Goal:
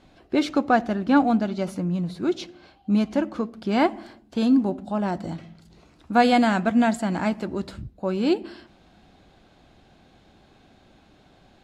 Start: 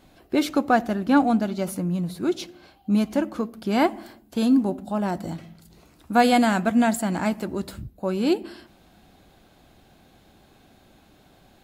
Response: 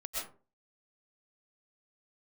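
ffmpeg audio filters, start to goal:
-af "lowpass=5900"

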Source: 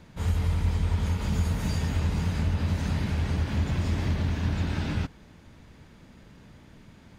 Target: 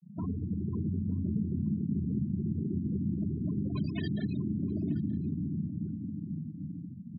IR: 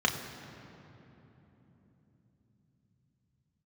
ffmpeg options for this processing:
-filter_complex "[0:a]asoftclip=type=tanh:threshold=0.0531,asplit=3[s0][s1][s2];[s0]afade=t=out:st=0.72:d=0.02[s3];[s1]acontrast=26,afade=t=in:st=0.72:d=0.02,afade=t=out:st=1.44:d=0.02[s4];[s2]afade=t=in:st=1.44:d=0.02[s5];[s3][s4][s5]amix=inputs=3:normalize=0,asettb=1/sr,asplit=3[s6][s7][s8];[s6]atrim=end=2.264[s9];[s7]atrim=start=2.26:end=3.05,asetpts=PTS-STARTPTS,afade=t=in:d=0.004:c=qsin,afade=t=out:st=0.786:d=0.004:c=qsin,volume=31.6,asoftclip=hard,volume=0.0316[s10];[s8]atrim=start=3.046[s11];[s9][s10]acrossfade=d=0.004:c1=hsin:c2=qsin[s12];[s12][s11]acrossfade=d=0.004:c1=qsin:c2=hsin,asettb=1/sr,asplit=3[s13][s14][s15];[s13]atrim=end=3.754[s16];[s14]atrim=start=3.75:end=4.37,asetpts=PTS-STARTPTS,afade=t=in:d=0.004:c=qsin,afade=t=out:st=0.616:d=0.004:c=qsin,equalizer=f=6000:w=0.3:g=12.5[s17];[s15]atrim=start=4.366[s18];[s16][s17]acrossfade=d=0.004:c1=hsin:c2=qsin[s19];[s19][s18]acrossfade=d=0.004:c1=qsin:c2=hsin[s20];[1:a]atrim=start_sample=2205,asetrate=61740,aresample=44100[s21];[s20][s21]afir=irnorm=-1:irlink=0,acompressor=threshold=0.0398:ratio=4,afftfilt=real='re*gte(hypot(re,im),0.0501)':imag='im*gte(hypot(re,im),0.0501)':win_size=1024:overlap=0.75,highpass=110,aecho=1:1:925:0.0794"

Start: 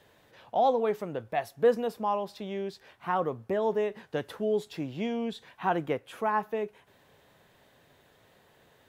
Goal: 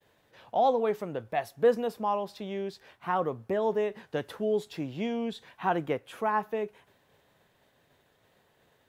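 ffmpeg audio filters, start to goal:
-af "agate=range=0.0224:threshold=0.00158:ratio=3:detection=peak"

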